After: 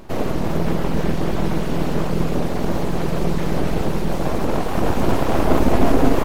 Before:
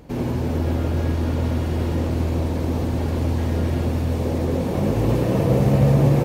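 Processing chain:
reverb reduction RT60 0.61 s
full-wave rectification
level +6 dB

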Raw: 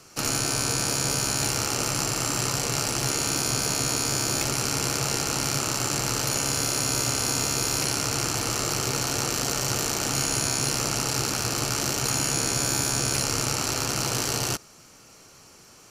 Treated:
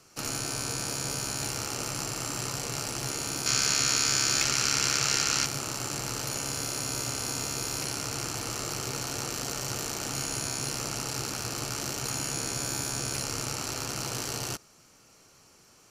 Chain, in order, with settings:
0:03.46–0:05.46: flat-topped bell 3,000 Hz +9.5 dB 2.8 octaves
level −7 dB

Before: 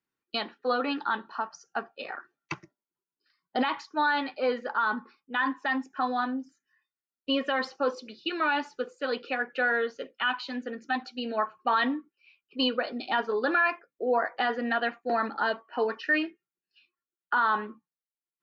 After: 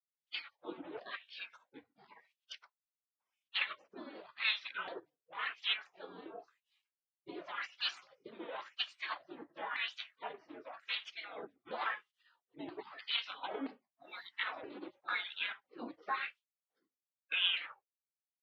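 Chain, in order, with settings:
pitch shifter swept by a sawtooth −4 semitones, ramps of 976 ms
high-shelf EQ 2,800 Hz +6.5 dB
gate on every frequency bin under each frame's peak −25 dB weak
LFO wah 0.93 Hz 290–3,200 Hz, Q 3.3
level +17 dB

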